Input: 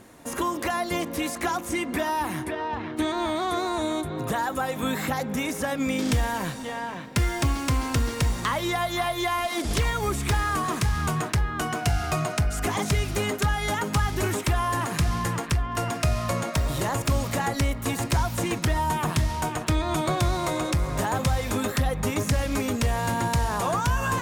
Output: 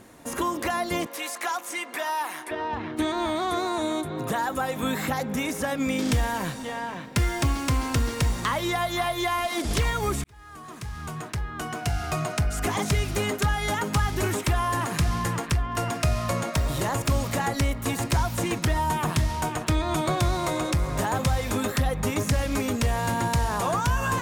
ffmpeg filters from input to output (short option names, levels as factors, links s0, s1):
-filter_complex "[0:a]asettb=1/sr,asplit=3[s0][s1][s2];[s0]atrim=end=1.064[s3];[s1]atrim=start=1.06:end=2.51,asetpts=PTS-STARTPTS,afade=t=in:d=0.004:c=qsin,afade=t=out:st=1.446:d=0.004:c=qsin,highpass=670[s4];[s2]atrim=start=2.506[s5];[s3][s4]acrossfade=d=0.004:c1=hsin:c2=qsin[s6];[s6][s5]acrossfade=d=0.004:c1=qsin:c2=hsin,asettb=1/sr,asplit=3[s7][s8][s9];[s7]atrim=end=3.684[s10];[s8]atrim=start=3.68:end=4.44,asetpts=PTS-STARTPTS,afade=t=in:d=0.004:c=qsin,afade=t=out:st=0.756:d=0.004:c=qsin,highpass=110[s11];[s9]atrim=start=4.436[s12];[s10][s11]acrossfade=d=0.004:c1=hsin:c2=qsin[s13];[s13][s12]acrossfade=d=0.004:c1=qsin:c2=hsin,asplit=2[s14][s15];[s14]atrim=end=10.24,asetpts=PTS-STARTPTS,afade=t=out:st=10.236:d=0.004:c=hsin[s16];[s15]atrim=start=10.24,asetpts=PTS-STARTPTS,afade=t=in:d=2.37[s17];[s16][s17]concat=n=2:v=0:a=1"